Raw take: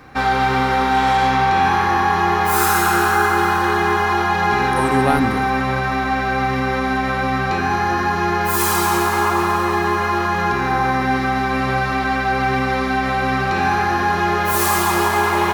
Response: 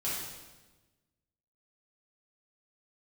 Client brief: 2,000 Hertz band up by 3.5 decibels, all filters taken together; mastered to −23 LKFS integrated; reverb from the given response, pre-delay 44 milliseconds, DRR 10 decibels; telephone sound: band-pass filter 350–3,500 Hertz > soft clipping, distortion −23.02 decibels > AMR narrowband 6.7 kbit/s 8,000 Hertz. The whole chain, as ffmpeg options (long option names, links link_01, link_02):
-filter_complex "[0:a]equalizer=frequency=2000:width_type=o:gain=5,asplit=2[link_01][link_02];[1:a]atrim=start_sample=2205,adelay=44[link_03];[link_02][link_03]afir=irnorm=-1:irlink=0,volume=-15dB[link_04];[link_01][link_04]amix=inputs=2:normalize=0,highpass=350,lowpass=3500,asoftclip=threshold=-7.5dB,volume=-3dB" -ar 8000 -c:a libopencore_amrnb -b:a 6700